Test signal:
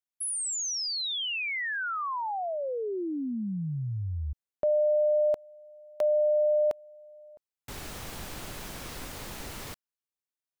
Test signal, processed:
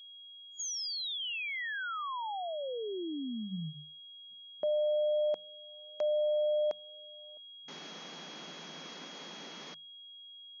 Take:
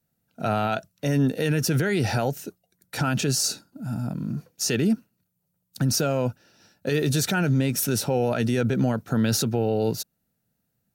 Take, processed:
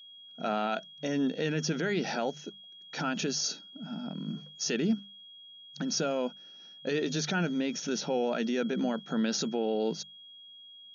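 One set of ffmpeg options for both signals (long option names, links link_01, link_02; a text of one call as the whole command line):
ffmpeg -i in.wav -af "bandreject=frequency=50:width_type=h:width=6,bandreject=frequency=100:width_type=h:width=6,bandreject=frequency=150:width_type=h:width=6,bandreject=frequency=200:width_type=h:width=6,afftfilt=real='re*between(b*sr/4096,150,6800)':imag='im*between(b*sr/4096,150,6800)':win_size=4096:overlap=0.75,aeval=exprs='val(0)+0.00708*sin(2*PI*3300*n/s)':channel_layout=same,volume=-5.5dB" out.wav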